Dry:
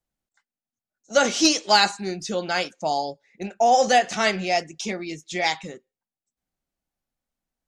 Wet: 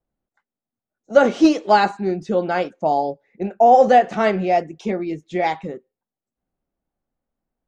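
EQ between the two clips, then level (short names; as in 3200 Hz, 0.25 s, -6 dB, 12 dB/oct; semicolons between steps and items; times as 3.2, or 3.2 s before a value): EQ curve 140 Hz 0 dB, 430 Hz +3 dB, 1200 Hz -3 dB, 3800 Hz -15 dB, 5400 Hz -21 dB; +5.5 dB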